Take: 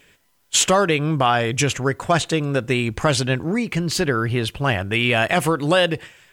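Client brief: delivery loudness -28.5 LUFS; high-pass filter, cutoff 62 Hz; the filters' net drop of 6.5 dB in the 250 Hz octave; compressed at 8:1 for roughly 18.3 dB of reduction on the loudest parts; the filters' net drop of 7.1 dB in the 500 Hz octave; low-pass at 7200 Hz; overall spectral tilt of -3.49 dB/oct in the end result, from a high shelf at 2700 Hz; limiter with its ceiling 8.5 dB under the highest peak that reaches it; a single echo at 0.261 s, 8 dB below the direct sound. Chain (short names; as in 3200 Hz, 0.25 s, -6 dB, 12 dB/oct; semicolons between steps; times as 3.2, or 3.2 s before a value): HPF 62 Hz; LPF 7200 Hz; bell 250 Hz -7.5 dB; bell 500 Hz -7.5 dB; high shelf 2700 Hz +8.5 dB; compressor 8:1, threshold -28 dBFS; limiter -22 dBFS; echo 0.261 s -8 dB; gain +4 dB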